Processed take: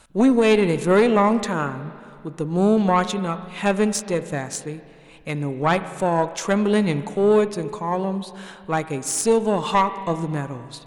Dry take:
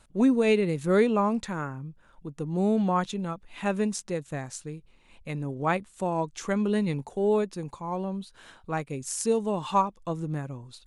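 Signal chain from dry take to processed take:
low-shelf EQ 220 Hz −7 dB
tube saturation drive 18 dB, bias 0.5
spring reverb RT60 2.3 s, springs 35/41/47 ms, chirp 45 ms, DRR 12.5 dB
boost into a limiter +18 dB
level −6.5 dB

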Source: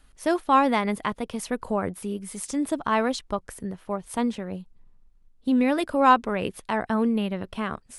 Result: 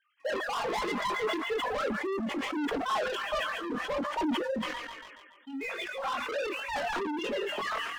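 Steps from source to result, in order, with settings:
three sine waves on the formant tracks
0:04.59–0:06.29: first difference
on a send: delay with a high-pass on its return 141 ms, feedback 74%, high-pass 1,900 Hz, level −7 dB
on the sum: gate on every frequency bin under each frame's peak −20 dB strong
in parallel at −1 dB: compressor whose output falls as the input rises −29 dBFS, ratio −1
on the sum: leveller curve on the samples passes 2
chorus effect 1.2 Hz, delay 20 ms, depth 3.1 ms
soft clipping −25.5 dBFS, distortion −7 dB
flanger 0.47 Hz, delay 3.2 ms, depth 1.9 ms, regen +30%
level that may fall only so fast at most 35 dB per second

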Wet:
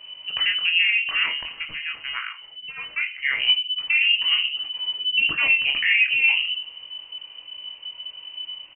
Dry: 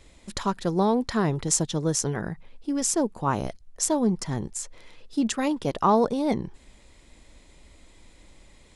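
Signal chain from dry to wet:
0:01.23–0:03.40: low shelf with overshoot 600 Hz −12 dB, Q 1.5
brickwall limiter −17.5 dBFS, peak gain reduction 9 dB
high-frequency loss of the air 200 metres
double-tracking delay 23 ms −6 dB
rectangular room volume 300 cubic metres, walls furnished, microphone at 0.75 metres
voice inversion scrambler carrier 3,000 Hz
level +4.5 dB

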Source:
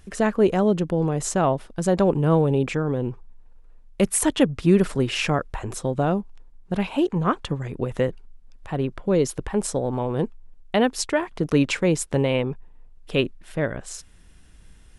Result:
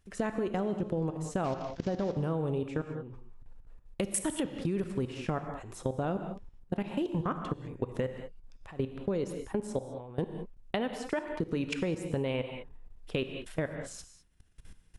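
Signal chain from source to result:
0:01.44–0:02.15: linear delta modulator 32 kbit/s, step −32 dBFS
output level in coarse steps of 23 dB
reverb whose tail is shaped and stops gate 230 ms flat, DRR 8.5 dB
downward compressor 4 to 1, threshold −29 dBFS, peak gain reduction 9 dB

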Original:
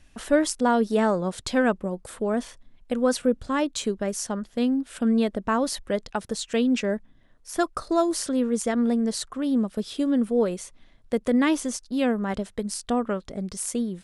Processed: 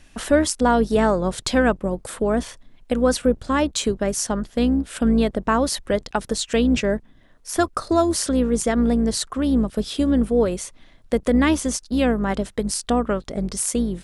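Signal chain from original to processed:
sub-octave generator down 2 octaves, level −5 dB
low-shelf EQ 150 Hz −4 dB
in parallel at 0 dB: downward compressor, threshold −28 dBFS, peak gain reduction 13 dB
on the sum: level +1.5 dB

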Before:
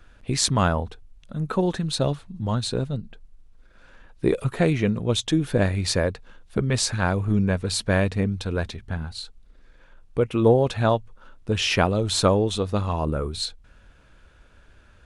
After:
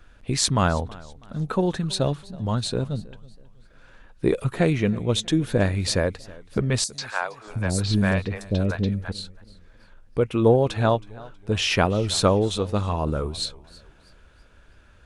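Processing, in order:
0:06.84–0:09.12: three-band delay without the direct sound highs, mids, lows 140/630 ms, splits 550/5,400 Hz
feedback echo with a swinging delay time 323 ms, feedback 36%, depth 99 cents, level −21.5 dB

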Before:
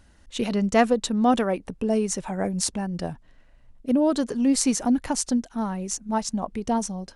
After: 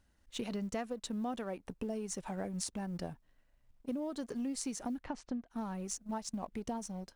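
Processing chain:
mu-law and A-law mismatch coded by A
downward compressor 10 to 1, threshold −27 dBFS, peak gain reduction 14 dB
0:05.01–0:05.49: low-pass filter 3,400 Hz → 1,900 Hz 12 dB per octave
level −7.5 dB

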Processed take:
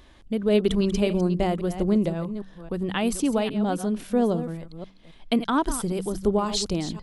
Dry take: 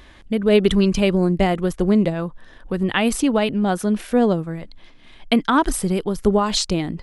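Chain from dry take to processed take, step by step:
delay that plays each chunk backwards 269 ms, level −11.5 dB
parametric band 1,900 Hz −5.5 dB 1.2 octaves
hum removal 47.88 Hz, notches 4
level −5 dB

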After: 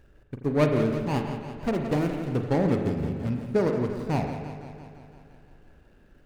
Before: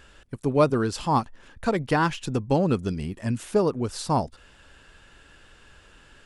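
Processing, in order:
running median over 41 samples
spring reverb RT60 1.2 s, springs 40 ms, chirp 25 ms, DRR 5 dB
feedback echo with a swinging delay time 170 ms, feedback 66%, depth 78 cents, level −10.5 dB
level −1.5 dB

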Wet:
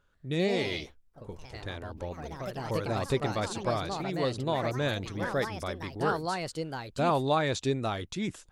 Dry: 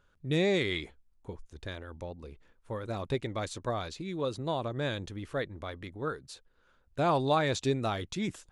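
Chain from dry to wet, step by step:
speech leveller within 5 dB 2 s
delay with pitch and tempo change per echo 132 ms, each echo +3 semitones, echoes 3, each echo −6 dB

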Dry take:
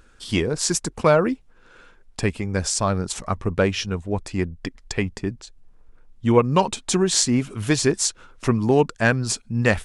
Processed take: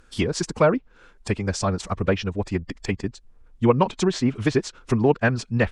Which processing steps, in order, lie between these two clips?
phase-vocoder stretch with locked phases 0.58×
treble cut that deepens with the level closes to 3,000 Hz, closed at −17 dBFS

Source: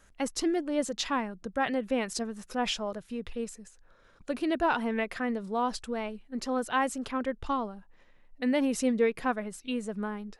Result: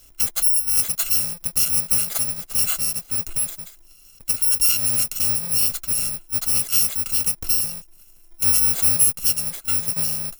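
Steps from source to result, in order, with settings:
samples in bit-reversed order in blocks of 128 samples
high-shelf EQ 5,500 Hz +6.5 dB
in parallel at +3 dB: downward compressor, threshold −28 dBFS, peak gain reduction 12.5 dB

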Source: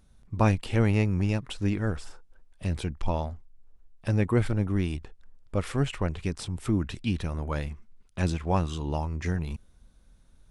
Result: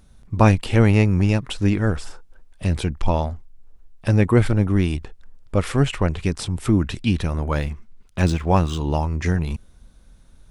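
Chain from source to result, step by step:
0:07.27–0:09.11: running median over 3 samples
level +8 dB

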